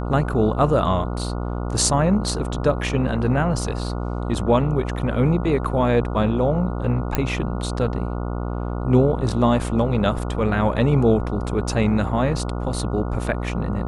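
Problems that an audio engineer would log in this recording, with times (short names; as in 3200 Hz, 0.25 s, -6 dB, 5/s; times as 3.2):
buzz 60 Hz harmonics 24 -26 dBFS
7.15 pop -5 dBFS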